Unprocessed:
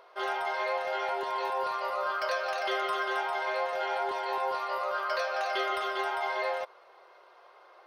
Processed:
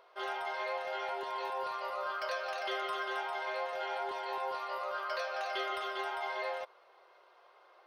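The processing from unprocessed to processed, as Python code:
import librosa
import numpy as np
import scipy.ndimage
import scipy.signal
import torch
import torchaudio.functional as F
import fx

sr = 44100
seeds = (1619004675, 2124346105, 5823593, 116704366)

y = fx.peak_eq(x, sr, hz=3100.0, db=2.5, octaves=0.77)
y = F.gain(torch.from_numpy(y), -6.0).numpy()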